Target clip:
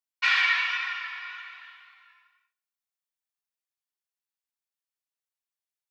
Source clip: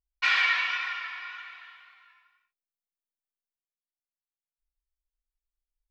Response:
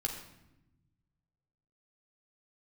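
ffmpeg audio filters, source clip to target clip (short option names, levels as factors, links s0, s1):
-filter_complex "[0:a]highpass=830,asplit=2[s0][s1];[1:a]atrim=start_sample=2205,asetrate=52920,aresample=44100[s2];[s1][s2]afir=irnorm=-1:irlink=0,volume=0.237[s3];[s0][s3]amix=inputs=2:normalize=0"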